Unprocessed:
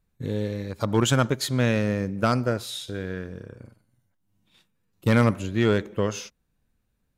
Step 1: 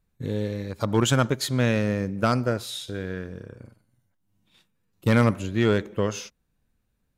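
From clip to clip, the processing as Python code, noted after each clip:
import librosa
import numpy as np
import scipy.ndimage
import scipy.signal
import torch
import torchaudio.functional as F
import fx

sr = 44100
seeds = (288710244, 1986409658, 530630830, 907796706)

y = x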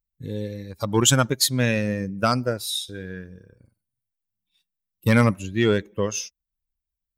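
y = fx.bin_expand(x, sr, power=1.5)
y = fx.high_shelf(y, sr, hz=3500.0, db=11.0)
y = F.gain(torch.from_numpy(y), 3.0).numpy()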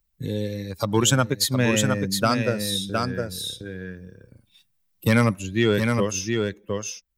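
y = x + 10.0 ** (-6.0 / 20.0) * np.pad(x, (int(712 * sr / 1000.0), 0))[:len(x)]
y = fx.band_squash(y, sr, depth_pct=40)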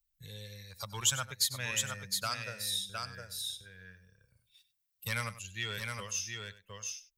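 y = fx.tone_stack(x, sr, knobs='10-0-10')
y = y + 10.0 ** (-15.0 / 20.0) * np.pad(y, (int(97 * sr / 1000.0), 0))[:len(y)]
y = F.gain(torch.from_numpy(y), -5.5).numpy()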